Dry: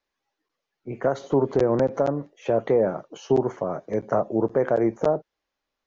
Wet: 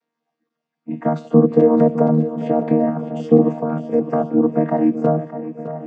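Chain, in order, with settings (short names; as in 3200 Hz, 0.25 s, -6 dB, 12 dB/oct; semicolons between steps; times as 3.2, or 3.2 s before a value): chord vocoder bare fifth, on D#3; swung echo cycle 1.016 s, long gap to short 1.5:1, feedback 39%, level -12 dB; gain +7 dB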